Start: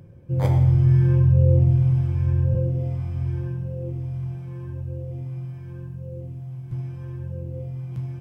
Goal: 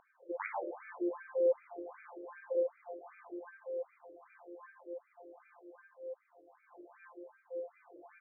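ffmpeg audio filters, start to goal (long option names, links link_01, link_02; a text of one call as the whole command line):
ffmpeg -i in.wav -af "asubboost=boost=8:cutoff=100,afftfilt=real='re*between(b*sr/1024,430*pow(1800/430,0.5+0.5*sin(2*PI*2.6*pts/sr))/1.41,430*pow(1800/430,0.5+0.5*sin(2*PI*2.6*pts/sr))*1.41)':imag='im*between(b*sr/1024,430*pow(1800/430,0.5+0.5*sin(2*PI*2.6*pts/sr))/1.41,430*pow(1800/430,0.5+0.5*sin(2*PI*2.6*pts/sr))*1.41)':win_size=1024:overlap=0.75,volume=3dB" out.wav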